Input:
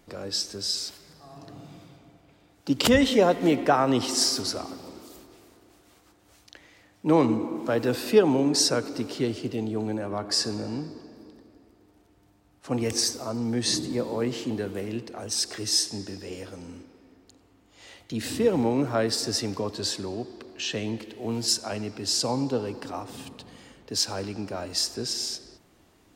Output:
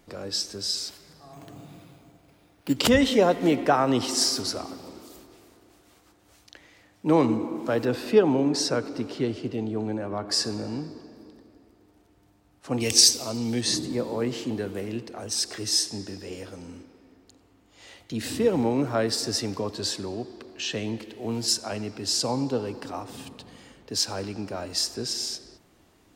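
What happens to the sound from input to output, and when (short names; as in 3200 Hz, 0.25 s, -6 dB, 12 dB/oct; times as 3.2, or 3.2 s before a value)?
1.33–2.76 careless resampling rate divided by 6×, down none, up hold
7.85–10.28 LPF 3500 Hz 6 dB/oct
12.8–13.61 resonant high shelf 2100 Hz +8.5 dB, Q 1.5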